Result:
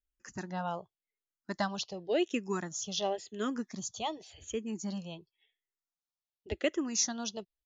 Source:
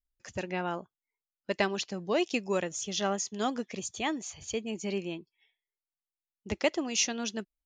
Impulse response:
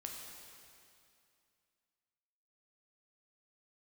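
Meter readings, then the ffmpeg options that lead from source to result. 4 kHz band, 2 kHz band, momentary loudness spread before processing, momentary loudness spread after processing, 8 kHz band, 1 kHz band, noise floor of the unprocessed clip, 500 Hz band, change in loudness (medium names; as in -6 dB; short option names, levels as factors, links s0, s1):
-3.5 dB, -6.5 dB, 11 LU, 13 LU, -1.5 dB, -2.5 dB, under -85 dBFS, -3.5 dB, -2.5 dB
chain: -filter_complex "[0:a]aresample=16000,aresample=44100,equalizer=f=2300:t=o:w=0.28:g=-9.5,asplit=2[s0][s1];[s1]afreqshift=-0.91[s2];[s0][s2]amix=inputs=2:normalize=1"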